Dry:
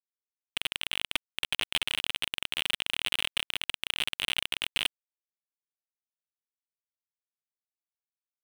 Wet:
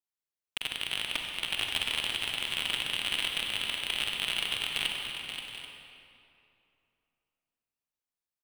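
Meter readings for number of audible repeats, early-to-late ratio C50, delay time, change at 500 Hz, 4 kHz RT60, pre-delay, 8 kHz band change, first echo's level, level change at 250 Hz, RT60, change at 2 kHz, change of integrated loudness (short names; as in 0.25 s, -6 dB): 3, 0.5 dB, 0.529 s, +1.0 dB, 1.8 s, 40 ms, 0.0 dB, -8.5 dB, +1.5 dB, 2.7 s, +0.5 dB, 0.0 dB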